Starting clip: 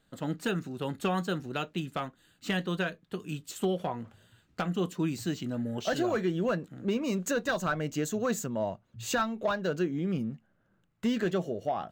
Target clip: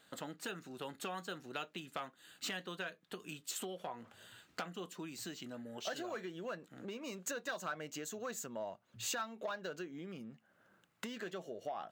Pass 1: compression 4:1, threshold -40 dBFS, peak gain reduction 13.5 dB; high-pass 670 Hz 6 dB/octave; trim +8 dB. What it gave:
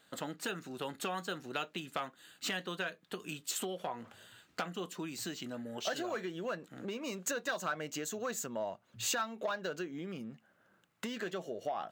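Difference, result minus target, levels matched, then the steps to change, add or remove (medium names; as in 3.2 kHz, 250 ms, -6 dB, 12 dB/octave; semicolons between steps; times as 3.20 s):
compression: peak gain reduction -5 dB
change: compression 4:1, threshold -46.5 dBFS, peak gain reduction 18 dB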